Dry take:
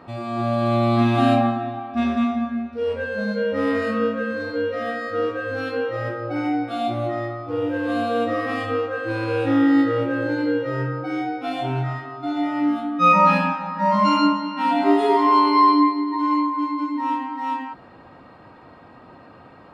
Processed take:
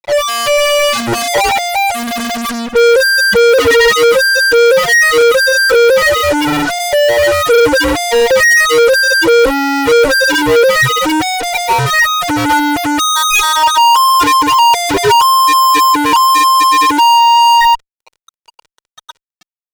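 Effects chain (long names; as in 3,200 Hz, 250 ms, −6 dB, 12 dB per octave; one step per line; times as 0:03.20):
high-pass filter 870 Hz 6 dB per octave
spectral peaks only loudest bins 2
fuzz pedal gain 53 dB, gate −55 dBFS
comb filter 2.1 ms, depth 64%
level +3 dB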